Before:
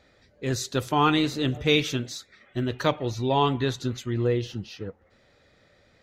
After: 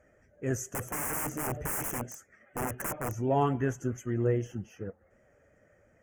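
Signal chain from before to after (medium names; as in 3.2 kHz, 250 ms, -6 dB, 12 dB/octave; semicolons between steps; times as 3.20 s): coarse spectral quantiser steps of 15 dB; graphic EQ with 31 bands 630 Hz +5 dB, 1 kHz -6 dB, 1.6 kHz +4 dB, 3.15 kHz +10 dB, 6.3 kHz +9 dB; 0.74–3.14 s: integer overflow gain 22.5 dB; Chebyshev shaper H 3 -26 dB, 5 -38 dB, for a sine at -10 dBFS; Butterworth band-stop 3.9 kHz, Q 0.66; trim -2.5 dB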